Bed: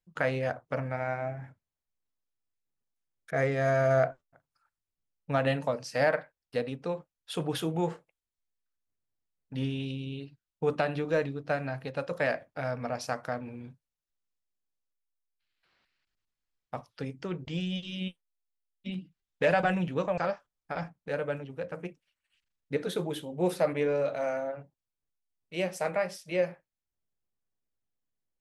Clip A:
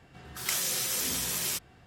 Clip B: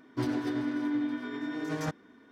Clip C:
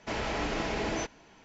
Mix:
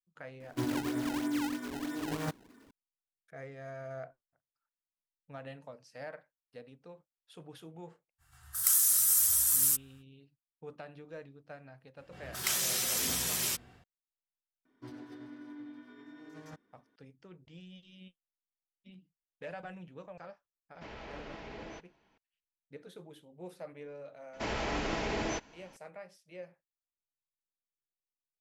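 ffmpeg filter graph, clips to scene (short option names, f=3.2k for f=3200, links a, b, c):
-filter_complex "[2:a]asplit=2[a][b];[1:a]asplit=2[c][d];[3:a]asplit=2[e][f];[0:a]volume=-18.5dB[g];[a]acrusher=samples=22:mix=1:aa=0.000001:lfo=1:lforange=35.2:lforate=3.1[h];[c]firequalizer=gain_entry='entry(100,0);entry(190,-26);entry(280,-24);entry(510,-29);entry(780,-10);entry(1300,0);entry(2300,-10);entry(9100,13)':delay=0.05:min_phase=1[i];[d]dynaudnorm=f=110:g=3:m=7dB[j];[e]lowpass=4.5k[k];[h]atrim=end=2.31,asetpts=PTS-STARTPTS,volume=-2.5dB,afade=t=in:d=0.004:c=hsin,afade=t=out:st=2.306:d=0.004:c=hsin,adelay=400[l];[i]atrim=end=1.86,asetpts=PTS-STARTPTS,volume=-4.5dB,afade=t=in:d=0.05,afade=t=out:st=1.81:d=0.05,adelay=360738S[m];[j]atrim=end=1.86,asetpts=PTS-STARTPTS,volume=-8dB,afade=t=in:d=0.004:c=hsin,afade=t=out:st=1.856:d=0.004:c=hsin,adelay=11980[n];[b]atrim=end=2.31,asetpts=PTS-STARTPTS,volume=-16.5dB,afade=t=in:d=0.004:c=hsin,afade=t=out:st=2.306:d=0.004:c=hsin,adelay=14650[o];[k]atrim=end=1.44,asetpts=PTS-STARTPTS,volume=-14dB,afade=t=in:d=0.004:c=hsin,afade=t=out:st=1.436:d=0.004:c=hsin,adelay=20740[p];[f]atrim=end=1.44,asetpts=PTS-STARTPTS,volume=-2dB,afade=t=in:d=0.004:c=hsin,afade=t=out:st=1.436:d=0.004:c=hsin,adelay=24330[q];[g][l][m][n][o][p][q]amix=inputs=7:normalize=0"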